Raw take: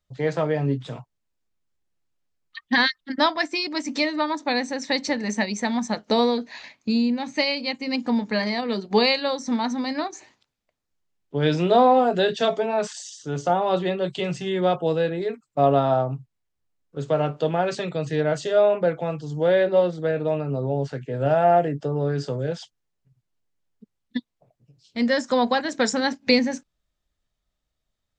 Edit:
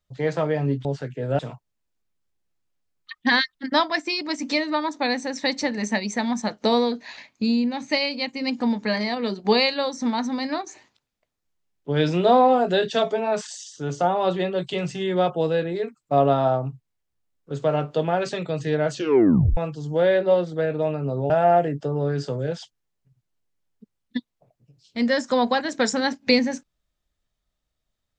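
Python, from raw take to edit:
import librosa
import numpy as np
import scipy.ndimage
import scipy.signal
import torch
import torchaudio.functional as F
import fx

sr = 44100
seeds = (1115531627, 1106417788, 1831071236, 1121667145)

y = fx.edit(x, sr, fx.tape_stop(start_s=18.39, length_s=0.64),
    fx.move(start_s=20.76, length_s=0.54, to_s=0.85), tone=tone)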